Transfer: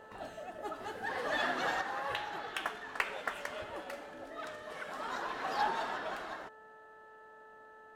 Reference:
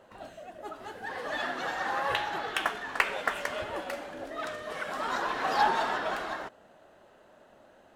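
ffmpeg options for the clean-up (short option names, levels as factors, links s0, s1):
-af "bandreject=f=436.1:t=h:w=4,bandreject=f=872.2:t=h:w=4,bandreject=f=1308.3:t=h:w=4,bandreject=f=1744.4:t=h:w=4,asetnsamples=n=441:p=0,asendcmd='1.81 volume volume 7.5dB',volume=1"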